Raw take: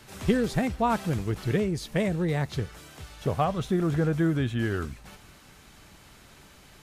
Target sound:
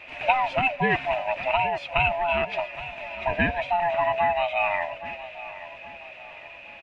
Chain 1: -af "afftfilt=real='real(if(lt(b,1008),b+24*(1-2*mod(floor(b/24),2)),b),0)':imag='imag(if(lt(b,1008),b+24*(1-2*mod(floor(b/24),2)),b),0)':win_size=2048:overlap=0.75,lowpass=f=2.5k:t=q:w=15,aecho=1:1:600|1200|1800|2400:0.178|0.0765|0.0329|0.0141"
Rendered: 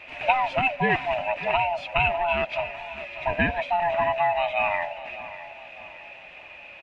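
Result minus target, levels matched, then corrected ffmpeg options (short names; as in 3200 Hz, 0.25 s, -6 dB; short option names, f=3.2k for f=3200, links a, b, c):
echo 0.22 s early
-af "afftfilt=real='real(if(lt(b,1008),b+24*(1-2*mod(floor(b/24),2)),b),0)':imag='imag(if(lt(b,1008),b+24*(1-2*mod(floor(b/24),2)),b),0)':win_size=2048:overlap=0.75,lowpass=f=2.5k:t=q:w=15,aecho=1:1:820|1640|2460|3280:0.178|0.0765|0.0329|0.0141"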